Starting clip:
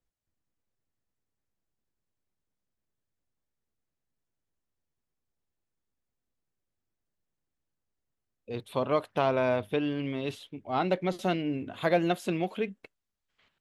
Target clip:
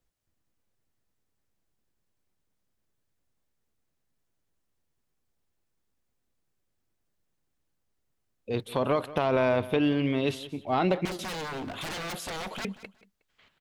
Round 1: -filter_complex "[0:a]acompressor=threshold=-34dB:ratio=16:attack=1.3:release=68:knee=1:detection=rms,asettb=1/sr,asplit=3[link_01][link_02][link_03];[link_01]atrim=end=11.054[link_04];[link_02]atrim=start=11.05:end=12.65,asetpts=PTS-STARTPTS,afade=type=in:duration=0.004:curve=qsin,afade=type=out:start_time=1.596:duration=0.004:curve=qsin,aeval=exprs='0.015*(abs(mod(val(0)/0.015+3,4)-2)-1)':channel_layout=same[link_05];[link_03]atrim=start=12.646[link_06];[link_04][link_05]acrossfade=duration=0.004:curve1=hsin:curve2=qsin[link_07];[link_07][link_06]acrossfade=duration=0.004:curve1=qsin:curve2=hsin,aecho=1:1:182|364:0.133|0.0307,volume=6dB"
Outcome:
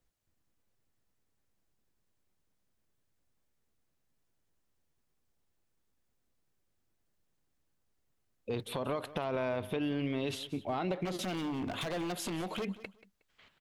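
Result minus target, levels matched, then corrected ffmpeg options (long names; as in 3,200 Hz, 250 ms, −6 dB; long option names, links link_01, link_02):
downward compressor: peak gain reduction +9.5 dB
-filter_complex "[0:a]acompressor=threshold=-24dB:ratio=16:attack=1.3:release=68:knee=1:detection=rms,asettb=1/sr,asplit=3[link_01][link_02][link_03];[link_01]atrim=end=11.054[link_04];[link_02]atrim=start=11.05:end=12.65,asetpts=PTS-STARTPTS,afade=type=in:duration=0.004:curve=qsin,afade=type=out:start_time=1.596:duration=0.004:curve=qsin,aeval=exprs='0.015*(abs(mod(val(0)/0.015+3,4)-2)-1)':channel_layout=same[link_05];[link_03]atrim=start=12.646[link_06];[link_04][link_05]acrossfade=duration=0.004:curve1=hsin:curve2=qsin[link_07];[link_07][link_06]acrossfade=duration=0.004:curve1=qsin:curve2=hsin,aecho=1:1:182|364:0.133|0.0307,volume=6dB"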